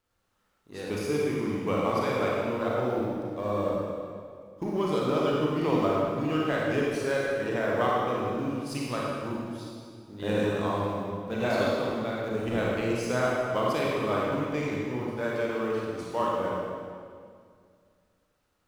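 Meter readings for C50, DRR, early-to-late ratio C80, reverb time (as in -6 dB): -3.0 dB, -4.5 dB, -0.5 dB, 2.1 s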